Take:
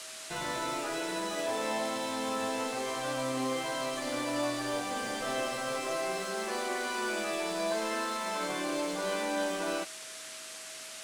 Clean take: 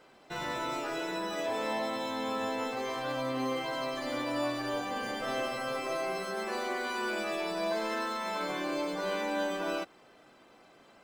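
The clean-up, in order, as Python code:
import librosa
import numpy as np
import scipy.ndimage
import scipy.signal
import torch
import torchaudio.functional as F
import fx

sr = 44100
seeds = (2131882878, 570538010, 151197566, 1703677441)

y = fx.notch(x, sr, hz=640.0, q=30.0)
y = fx.noise_reduce(y, sr, print_start_s=10.45, print_end_s=10.95, reduce_db=14.0)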